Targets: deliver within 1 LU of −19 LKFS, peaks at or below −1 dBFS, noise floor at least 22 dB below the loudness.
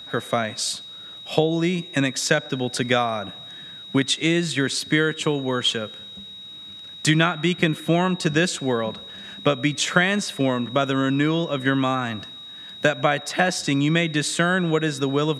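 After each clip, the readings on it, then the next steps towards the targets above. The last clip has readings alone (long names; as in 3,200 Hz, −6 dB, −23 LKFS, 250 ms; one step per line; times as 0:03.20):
interfering tone 3,800 Hz; level of the tone −37 dBFS; integrated loudness −22.0 LKFS; sample peak −2.5 dBFS; target loudness −19.0 LKFS
→ notch filter 3,800 Hz, Q 30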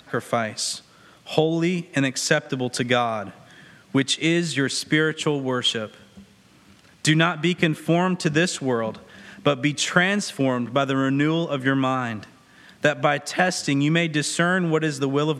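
interfering tone none found; integrated loudness −22.5 LKFS; sample peak −2.0 dBFS; target loudness −19.0 LKFS
→ level +3.5 dB
brickwall limiter −1 dBFS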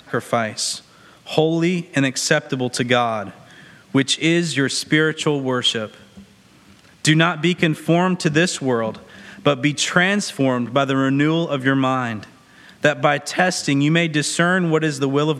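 integrated loudness −19.0 LKFS; sample peak −1.0 dBFS; background noise floor −50 dBFS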